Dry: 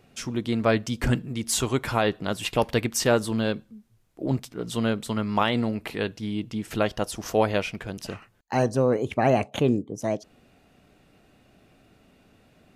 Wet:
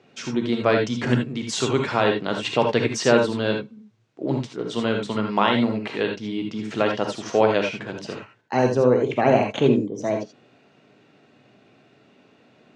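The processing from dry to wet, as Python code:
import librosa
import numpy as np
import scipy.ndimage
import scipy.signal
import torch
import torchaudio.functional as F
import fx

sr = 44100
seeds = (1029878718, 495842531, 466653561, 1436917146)

y = fx.cabinet(x, sr, low_hz=130.0, low_slope=24, high_hz=6100.0, hz=(180.0, 410.0, 5000.0), db=(-5, 3, -3))
y = fx.rev_gated(y, sr, seeds[0], gate_ms=100, shape='rising', drr_db=2.5)
y = y * librosa.db_to_amplitude(2.0)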